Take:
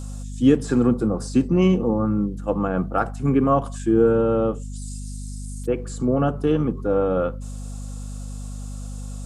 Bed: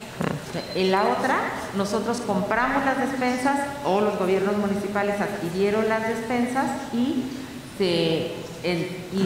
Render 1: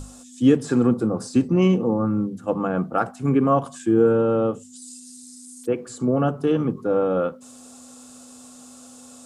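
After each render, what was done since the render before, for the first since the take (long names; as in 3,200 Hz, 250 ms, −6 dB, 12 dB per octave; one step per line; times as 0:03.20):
mains-hum notches 50/100/150/200 Hz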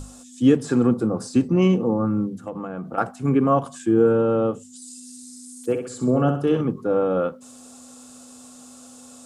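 0:02.44–0:02.98: downward compressor 12 to 1, threshold −26 dBFS
0:04.91–0:06.61: flutter between parallel walls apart 10.9 metres, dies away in 0.49 s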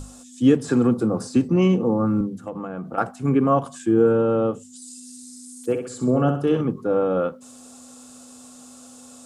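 0:00.68–0:02.21: multiband upward and downward compressor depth 40%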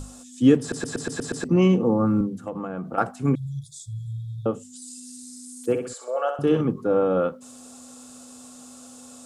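0:00.60: stutter in place 0.12 s, 7 plays
0:03.35–0:04.46: linear-phase brick-wall band-stop 150–3,300 Hz
0:05.93–0:06.39: elliptic high-pass filter 530 Hz, stop band 70 dB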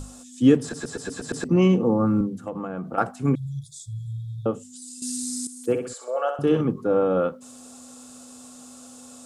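0:00.69–0:01.29: string-ensemble chorus
0:05.02–0:05.47: clip gain +11.5 dB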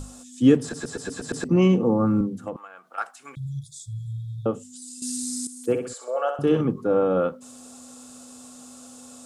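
0:02.56–0:03.37: high-pass filter 1,400 Hz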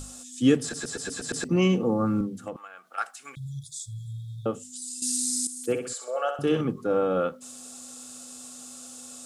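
tilt shelving filter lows −4.5 dB, about 1,400 Hz
notch filter 980 Hz, Q 7.7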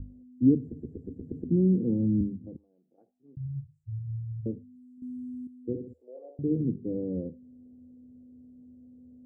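inverse Chebyshev low-pass filter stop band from 1,200 Hz, stop band 60 dB
parametric band 80 Hz +12.5 dB 0.39 octaves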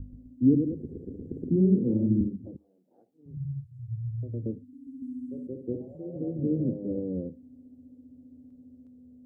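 delay with pitch and tempo change per echo 128 ms, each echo +1 semitone, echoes 2, each echo −6 dB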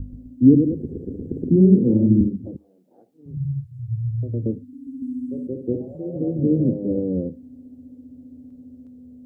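level +8.5 dB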